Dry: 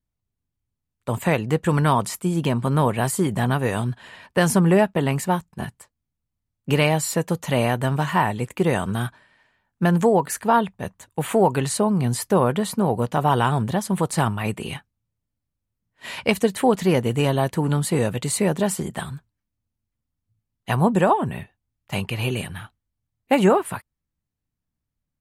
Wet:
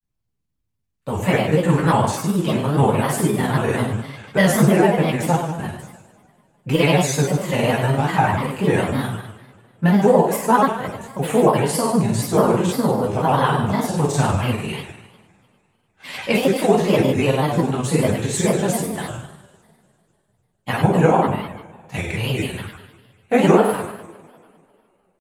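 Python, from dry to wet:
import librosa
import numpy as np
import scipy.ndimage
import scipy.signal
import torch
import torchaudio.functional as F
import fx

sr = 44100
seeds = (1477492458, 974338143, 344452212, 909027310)

y = fx.rev_double_slope(x, sr, seeds[0], early_s=0.89, late_s=2.7, knee_db=-21, drr_db=-5.5)
y = fx.granulator(y, sr, seeds[1], grain_ms=100.0, per_s=20.0, spray_ms=17.0, spread_st=3)
y = y * 10.0 ** (-2.5 / 20.0)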